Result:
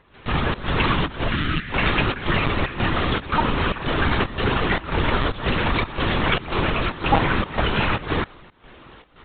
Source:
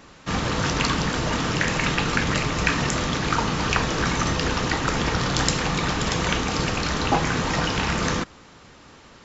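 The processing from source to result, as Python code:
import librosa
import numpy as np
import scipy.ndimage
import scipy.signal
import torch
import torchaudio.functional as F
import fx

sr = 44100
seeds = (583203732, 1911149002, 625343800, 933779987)

y = fx.spec_box(x, sr, start_s=1.28, length_s=0.43, low_hz=320.0, high_hz=1200.0, gain_db=-12)
y = fx.volume_shaper(y, sr, bpm=113, per_beat=1, depth_db=-16, release_ms=144.0, shape='slow start')
y = fx.lpc_vocoder(y, sr, seeds[0], excitation='pitch_kept', order=16)
y = y * librosa.db_to_amplitude(3.5)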